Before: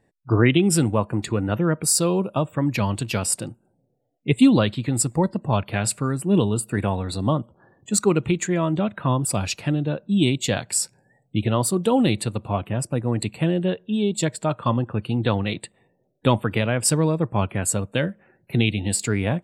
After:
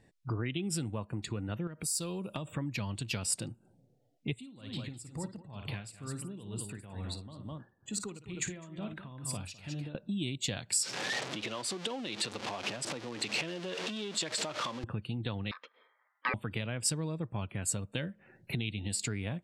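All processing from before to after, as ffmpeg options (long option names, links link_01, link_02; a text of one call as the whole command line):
ffmpeg -i in.wav -filter_complex "[0:a]asettb=1/sr,asplit=3[link_01][link_02][link_03];[link_01]atrim=end=1.674[link_04];[link_02]atrim=start=1.67:end=2.48,asetpts=PTS-STARTPTS,afade=type=in:duration=0.004:curve=qsin,afade=type=out:start_time=0.806:duration=0.004:curve=qsin,aemphasis=mode=production:type=50kf,acompressor=threshold=-28dB:ratio=5:attack=3.2:release=140:knee=1:detection=peak[link_05];[link_03]atrim=start=2.476[link_06];[link_04][link_05]acrossfade=duration=0.004:curve1=hsin:curve2=qsin[link_07];[link_07][link_06]acrossfade=duration=0.004:curve1=qsin:curve2=hsin,asettb=1/sr,asplit=3[link_08][link_09][link_10];[link_08]atrim=end=4.354[link_11];[link_09]atrim=start=4.35:end=9.95,asetpts=PTS-STARTPTS,afade=type=in:duration=0.004:curve=qsin,afade=type=out:start_time=5.596:duration=0.004:curve=qsin,acompressor=threshold=-39dB:ratio=2:attack=3.2:release=140:knee=1:detection=peak,aecho=1:1:55|206:0.299|0.355,atrim=end_sample=246960,aeval=exprs='val(0)*pow(10,-18*(0.5-0.5*cos(2*PI*2.2*n/s))/20)':channel_layout=same[link_12];[link_10]atrim=start=9.946[link_13];[link_11][link_12]acrossfade=duration=0.004:curve1=hsin:curve2=qsin[link_14];[link_14][link_13]acrossfade=duration=0.004:curve1=qsin:curve2=hsin,asettb=1/sr,asplit=3[link_15][link_16][link_17];[link_15]atrim=end=10.834[link_18];[link_16]atrim=start=10.83:end=14.84,asetpts=PTS-STARTPTS,afade=type=in:duration=0.004:curve=qsin,afade=type=out:start_time=4.006:duration=0.004:curve=qsin,aeval=exprs='val(0)+0.5*0.0501*sgn(val(0))':channel_layout=same,acompressor=threshold=-29dB:ratio=4:attack=3.2:release=140:knee=1:detection=peak,highpass=370,lowpass=6500[link_19];[link_17]atrim=start=14.836[link_20];[link_18][link_19]acrossfade=duration=0.004:curve1=hsin:curve2=qsin[link_21];[link_21][link_20]acrossfade=duration=0.004:curve1=qsin:curve2=hsin,asettb=1/sr,asplit=3[link_22][link_23][link_24];[link_22]atrim=end=15.514[link_25];[link_23]atrim=start=15.51:end=16.34,asetpts=PTS-STARTPTS,afade=type=in:duration=0.004:curve=qsin,afade=type=out:start_time=0.826:duration=0.004:curve=qsin,aeval=exprs='val(0)*sin(2*PI*1400*n/s)':channel_layout=same,highpass=frequency=230:width=0.5412,highpass=frequency=230:width=1.3066,equalizer=frequency=230:width_type=q:width=4:gain=8,equalizer=frequency=350:width_type=q:width=4:gain=-9,equalizer=frequency=510:width_type=q:width=4:gain=10,equalizer=frequency=790:width_type=q:width=4:gain=-4,equalizer=frequency=1600:width_type=q:width=4:gain=-7,lowpass=frequency=3000:width=0.5412,lowpass=frequency=3000:width=1.3066[link_26];[link_24]atrim=start=16.336[link_27];[link_25][link_26]acrossfade=duration=0.004:curve1=hsin:curve2=qsin[link_28];[link_28][link_27]acrossfade=duration=0.004:curve1=qsin:curve2=hsin,lowshelf=frequency=350:gain=10,acompressor=threshold=-31dB:ratio=4,equalizer=frequency=4300:width=0.37:gain=12,volume=-6dB" out.wav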